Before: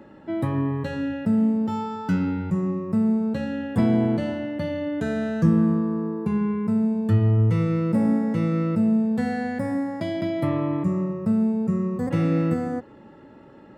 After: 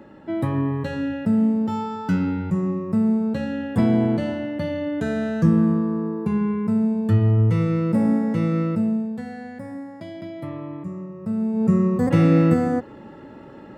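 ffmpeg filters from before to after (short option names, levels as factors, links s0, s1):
-af "volume=6.31,afade=t=out:st=8.6:d=0.63:silence=0.316228,afade=t=in:st=11.11:d=0.41:silence=0.421697,afade=t=in:st=11.52:d=0.16:silence=0.446684"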